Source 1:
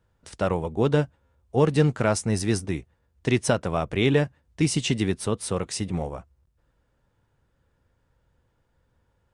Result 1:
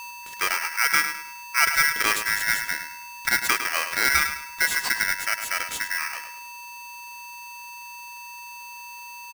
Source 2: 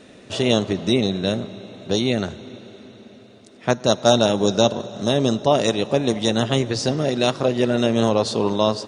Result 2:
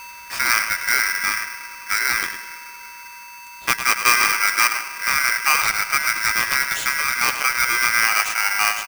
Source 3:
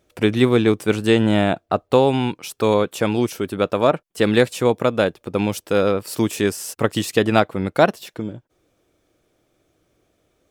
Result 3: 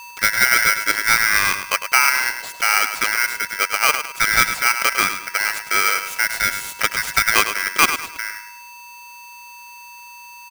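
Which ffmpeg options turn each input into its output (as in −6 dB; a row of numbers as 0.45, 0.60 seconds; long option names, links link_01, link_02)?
-filter_complex "[0:a]aeval=exprs='val(0)+0.02*sin(2*PI*840*n/s)':channel_layout=same,asplit=2[link_01][link_02];[link_02]adelay=104,lowpass=frequency=4900:poles=1,volume=-9dB,asplit=2[link_03][link_04];[link_04]adelay=104,lowpass=frequency=4900:poles=1,volume=0.35,asplit=2[link_05][link_06];[link_06]adelay=104,lowpass=frequency=4900:poles=1,volume=0.35,asplit=2[link_07][link_08];[link_08]adelay=104,lowpass=frequency=4900:poles=1,volume=0.35[link_09];[link_01][link_03][link_05][link_07][link_09]amix=inputs=5:normalize=0,aeval=exprs='val(0)*sgn(sin(2*PI*1800*n/s))':channel_layout=same,volume=-1dB"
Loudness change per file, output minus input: +2.5, +2.0, +2.0 LU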